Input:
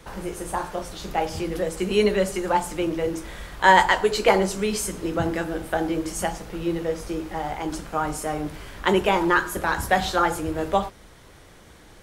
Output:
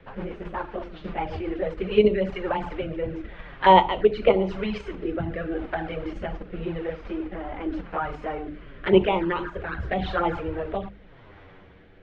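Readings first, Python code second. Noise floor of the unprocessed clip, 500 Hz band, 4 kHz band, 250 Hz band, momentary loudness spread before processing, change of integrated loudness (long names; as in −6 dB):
−49 dBFS, 0.0 dB, −5.0 dB, −1.5 dB, 11 LU, −2.0 dB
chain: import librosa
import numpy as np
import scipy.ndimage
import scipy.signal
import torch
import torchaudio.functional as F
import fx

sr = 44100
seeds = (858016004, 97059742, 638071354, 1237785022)

p1 = fx.env_flanger(x, sr, rest_ms=11.9, full_db=-16.0)
p2 = scipy.signal.sosfilt(scipy.signal.butter(4, 2900.0, 'lowpass', fs=sr, output='sos'), p1)
p3 = fx.level_steps(p2, sr, step_db=19)
p4 = p2 + F.gain(torch.from_numpy(p3), 1.5).numpy()
p5 = fx.rotary_switch(p4, sr, hz=8.0, then_hz=0.9, switch_at_s=1.26)
y = fx.hum_notches(p5, sr, base_hz=50, count=7)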